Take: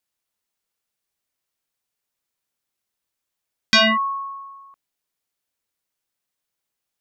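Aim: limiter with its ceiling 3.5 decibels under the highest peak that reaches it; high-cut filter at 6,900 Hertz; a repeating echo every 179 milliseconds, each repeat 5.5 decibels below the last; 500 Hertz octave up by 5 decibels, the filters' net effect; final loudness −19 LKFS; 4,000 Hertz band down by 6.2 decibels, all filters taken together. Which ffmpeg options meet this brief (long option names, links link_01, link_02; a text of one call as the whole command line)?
ffmpeg -i in.wav -af "lowpass=6900,equalizer=frequency=500:width_type=o:gain=8.5,equalizer=frequency=4000:width_type=o:gain=-8.5,alimiter=limit=-11.5dB:level=0:latency=1,aecho=1:1:179|358|537|716|895|1074|1253:0.531|0.281|0.149|0.079|0.0419|0.0222|0.0118,volume=2dB" out.wav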